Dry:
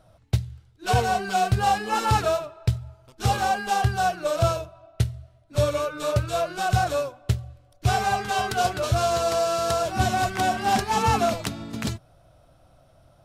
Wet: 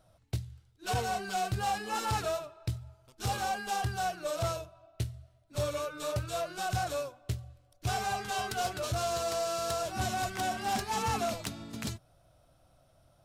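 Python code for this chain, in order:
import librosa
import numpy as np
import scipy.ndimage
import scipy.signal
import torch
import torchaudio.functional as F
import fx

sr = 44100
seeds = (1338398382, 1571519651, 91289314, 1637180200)

y = fx.high_shelf(x, sr, hz=4000.0, db=6.5)
y = 10.0 ** (-15.5 / 20.0) * np.tanh(y / 10.0 ** (-15.5 / 20.0))
y = F.gain(torch.from_numpy(y), -8.5).numpy()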